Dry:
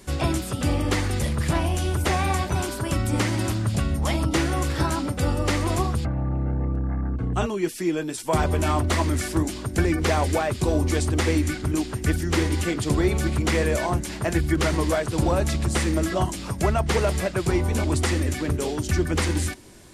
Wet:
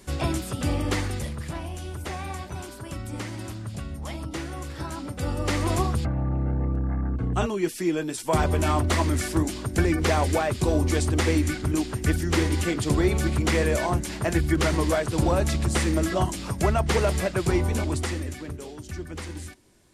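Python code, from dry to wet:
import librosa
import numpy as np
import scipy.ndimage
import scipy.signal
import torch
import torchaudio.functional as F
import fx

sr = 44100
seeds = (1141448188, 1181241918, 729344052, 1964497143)

y = fx.gain(x, sr, db=fx.line((1.0, -2.5), (1.49, -10.5), (4.8, -10.5), (5.67, -0.5), (17.63, -0.5), (18.67, -12.5)))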